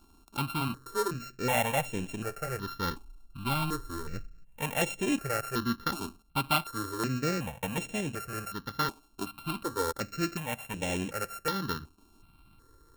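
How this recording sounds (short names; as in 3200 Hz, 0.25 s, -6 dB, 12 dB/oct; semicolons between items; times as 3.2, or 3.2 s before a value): a buzz of ramps at a fixed pitch in blocks of 32 samples; notches that jump at a steady rate 2.7 Hz 510–4600 Hz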